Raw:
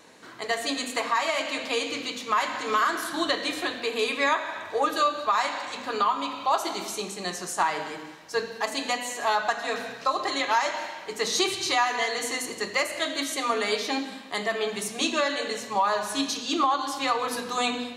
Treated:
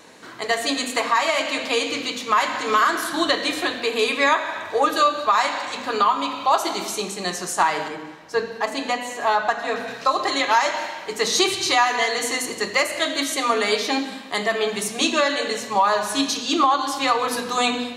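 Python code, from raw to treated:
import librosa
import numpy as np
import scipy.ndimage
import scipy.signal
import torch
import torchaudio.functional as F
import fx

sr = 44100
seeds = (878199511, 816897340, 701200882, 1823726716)

y = fx.high_shelf(x, sr, hz=3100.0, db=-9.0, at=(7.88, 9.88))
y = y * 10.0 ** (5.5 / 20.0)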